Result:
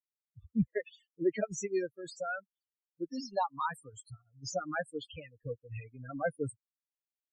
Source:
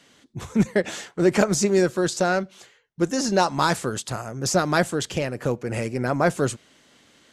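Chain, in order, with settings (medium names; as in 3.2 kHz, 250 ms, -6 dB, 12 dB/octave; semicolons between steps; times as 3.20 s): expander on every frequency bin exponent 3; wow and flutter 29 cents; 2.04–3.28 s: dynamic bell 340 Hz, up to -4 dB, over -40 dBFS, Q 1.1; loudest bins only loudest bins 16; trim -6.5 dB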